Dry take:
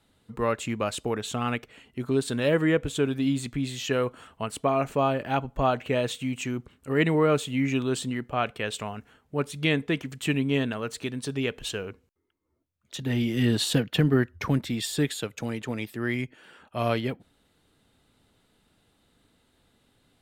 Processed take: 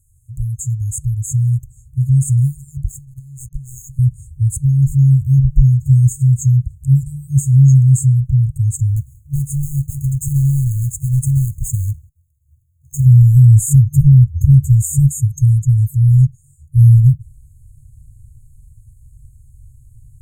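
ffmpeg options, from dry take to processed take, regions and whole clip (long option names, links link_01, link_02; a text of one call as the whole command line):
ffmpeg -i in.wav -filter_complex "[0:a]asettb=1/sr,asplit=3[link_01][link_02][link_03];[link_01]atrim=end=2.834[link_04];[link_02]atrim=start=2.83:end=3.99,asetpts=PTS-STARTPTS,afade=type=in:duration=0.004:curve=qsin,afade=type=out:start_time=1.156:duration=0.004:curve=qsin,equalizer=frequency=130:width_type=o:width=0.49:gain=-12,aeval=exprs='sgn(val(0))*max(abs(val(0))-0.01,0)':channel_layout=same,acompressor=threshold=-38dB:ratio=16:attack=3.2:release=140:knee=1:detection=peak[link_05];[link_03]atrim=start=3.986[link_06];[link_04][link_05]acrossfade=duration=0.004:curve1=hsin:curve2=qsin[link_07];[link_07][link_06]acrossfade=duration=0.004:curve1=qsin:curve2=hsin,asettb=1/sr,asplit=3[link_08][link_09][link_10];[link_08]atrim=end=8.964[link_11];[link_09]atrim=start=8.96:end=13.05,asetpts=PTS-STARTPTS,afade=type=in:duration=0.004:curve=qsin,afade=type=out:start_time=4.086:duration=0.004:curve=qsin,highpass=frequency=72:poles=1,acompressor=threshold=-28dB:ratio=8:attack=3.2:release=140:knee=1:detection=peak,acrusher=bits=2:mode=log:mix=0:aa=0.000001[link_12];[link_10]atrim=start=13.046[link_13];[link_11][link_12]acrossfade=duration=0.004:curve1=hsin:curve2=qsin[link_14];[link_14][link_13]acrossfade=duration=0.004:curve1=qsin:curve2=hsin,afftfilt=real='re*(1-between(b*sr/4096,140,6400))':imag='im*(1-between(b*sr/4096,140,6400))':win_size=4096:overlap=0.75,asubboost=boost=9.5:cutoff=130,alimiter=level_in=14.5dB:limit=-1dB:release=50:level=0:latency=1,volume=-1dB" out.wav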